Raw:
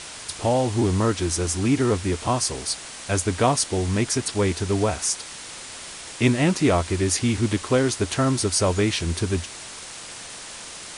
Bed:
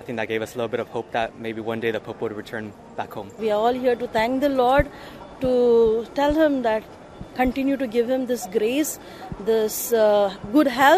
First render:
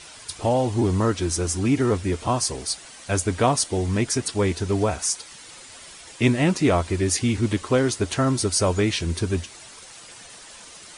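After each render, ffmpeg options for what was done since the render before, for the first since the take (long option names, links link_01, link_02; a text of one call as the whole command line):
ffmpeg -i in.wav -af "afftdn=noise_reduction=9:noise_floor=-38" out.wav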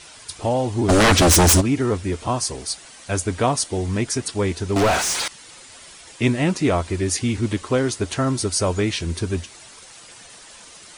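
ffmpeg -i in.wav -filter_complex "[0:a]asplit=3[link_01][link_02][link_03];[link_01]afade=type=out:start_time=0.88:duration=0.02[link_04];[link_02]aeval=exprs='0.316*sin(PI/2*5.01*val(0)/0.316)':channel_layout=same,afade=type=in:start_time=0.88:duration=0.02,afade=type=out:start_time=1.6:duration=0.02[link_05];[link_03]afade=type=in:start_time=1.6:duration=0.02[link_06];[link_04][link_05][link_06]amix=inputs=3:normalize=0,asettb=1/sr,asplit=3[link_07][link_08][link_09];[link_07]atrim=end=4.764[link_10];[link_08]atrim=start=4.76:end=5.28,asetpts=PTS-STARTPTS,afade=type=in:duration=0.004:curve=qsin,afade=type=out:start_time=0.516:duration=0.004:curve=qsin,asplit=2[link_11][link_12];[link_12]highpass=frequency=720:poles=1,volume=33dB,asoftclip=type=tanh:threshold=-10.5dB[link_13];[link_11][link_13]amix=inputs=2:normalize=0,lowpass=frequency=3300:poles=1,volume=-6dB[link_14];[link_09]atrim=start=5.276[link_15];[link_10][link_14]acrossfade=duration=0.004:curve1=hsin:curve2=qsin[link_16];[link_16][link_15]acrossfade=duration=0.004:curve1=qsin:curve2=hsin" out.wav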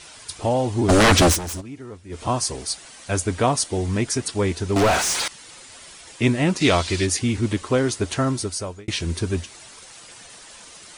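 ffmpeg -i in.wav -filter_complex "[0:a]asplit=3[link_01][link_02][link_03];[link_01]afade=type=out:start_time=6.6:duration=0.02[link_04];[link_02]equalizer=frequency=4200:width_type=o:width=1.9:gain=14.5,afade=type=in:start_time=6.6:duration=0.02,afade=type=out:start_time=7.05:duration=0.02[link_05];[link_03]afade=type=in:start_time=7.05:duration=0.02[link_06];[link_04][link_05][link_06]amix=inputs=3:normalize=0,asplit=4[link_07][link_08][link_09][link_10];[link_07]atrim=end=1.39,asetpts=PTS-STARTPTS,afade=type=out:start_time=1.26:duration=0.13:silence=0.149624[link_11];[link_08]atrim=start=1.39:end=2.09,asetpts=PTS-STARTPTS,volume=-16.5dB[link_12];[link_09]atrim=start=2.09:end=8.88,asetpts=PTS-STARTPTS,afade=type=in:duration=0.13:silence=0.149624,afade=type=out:start_time=6.12:duration=0.67[link_13];[link_10]atrim=start=8.88,asetpts=PTS-STARTPTS,afade=type=in:duration=0.004:curve=hsin[link_14];[link_11][link_12][link_13][link_14]concat=n=4:v=0:a=1" out.wav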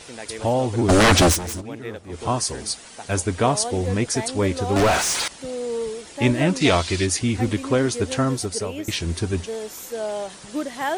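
ffmpeg -i in.wav -i bed.wav -filter_complex "[1:a]volume=-10.5dB[link_01];[0:a][link_01]amix=inputs=2:normalize=0" out.wav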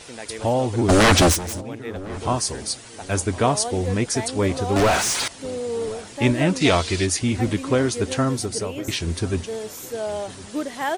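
ffmpeg -i in.wav -filter_complex "[0:a]asplit=2[link_01][link_02];[link_02]adelay=1057,lowpass=frequency=920:poles=1,volume=-18dB,asplit=2[link_03][link_04];[link_04]adelay=1057,lowpass=frequency=920:poles=1,volume=0.36,asplit=2[link_05][link_06];[link_06]adelay=1057,lowpass=frequency=920:poles=1,volume=0.36[link_07];[link_01][link_03][link_05][link_07]amix=inputs=4:normalize=0" out.wav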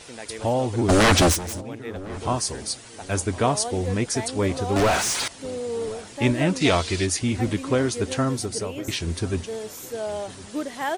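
ffmpeg -i in.wav -af "volume=-2dB" out.wav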